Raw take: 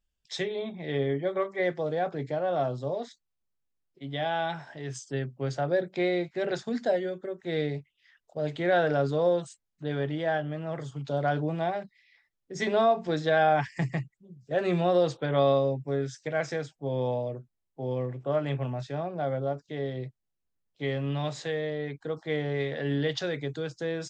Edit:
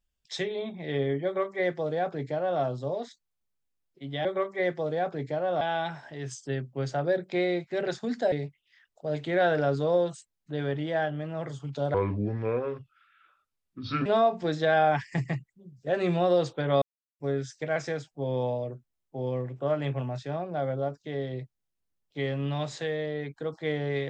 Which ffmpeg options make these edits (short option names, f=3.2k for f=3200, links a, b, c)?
-filter_complex "[0:a]asplit=8[a][b][c][d][e][f][g][h];[a]atrim=end=4.252[i];[b]atrim=start=1.248:end=2.612[j];[c]atrim=start=4.248:end=6.962[k];[d]atrim=start=7.638:end=11.264[l];[e]atrim=start=11.26:end=12.7,asetpts=PTS-STARTPTS,asetrate=29988,aresample=44100,atrim=end_sample=93388,asetpts=PTS-STARTPTS[m];[f]atrim=start=12.696:end=15.46,asetpts=PTS-STARTPTS,afade=t=out:st=2.76:d=0.004:c=hsin[n];[g]atrim=start=15.46:end=15.84,asetpts=PTS-STARTPTS,volume=0[o];[h]atrim=start=15.84,asetpts=PTS-STARTPTS,afade=t=in:d=0.004:c=hsin[p];[i][j]acrossfade=d=0.004:c1=hsin:c2=hsin[q];[q][k]acrossfade=d=0.004:c1=hsin:c2=hsin[r];[r][l]acrossfade=d=0.004:c1=hsin:c2=hsin[s];[s][m]acrossfade=d=0.004:c1=hsin:c2=hsin[t];[n][o][p]concat=n=3:v=0:a=1[u];[t][u]acrossfade=d=0.004:c1=hsin:c2=hsin"